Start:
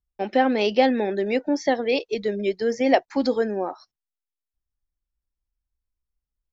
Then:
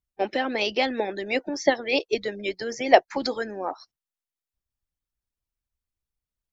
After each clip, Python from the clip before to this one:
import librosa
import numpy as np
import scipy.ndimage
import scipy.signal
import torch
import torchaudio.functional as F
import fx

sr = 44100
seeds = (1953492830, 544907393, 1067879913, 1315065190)

y = fx.hpss(x, sr, part='harmonic', gain_db=-13)
y = y * 10.0 ** (4.0 / 20.0)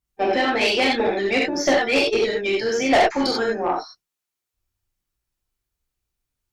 y = fx.rev_gated(x, sr, seeds[0], gate_ms=120, shape='flat', drr_db=-4.5)
y = fx.tube_stage(y, sr, drive_db=15.0, bias=0.2)
y = y * 10.0 ** (3.0 / 20.0)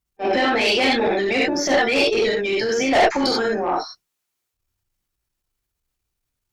y = fx.transient(x, sr, attack_db=-10, sustain_db=4)
y = y * 10.0 ** (2.0 / 20.0)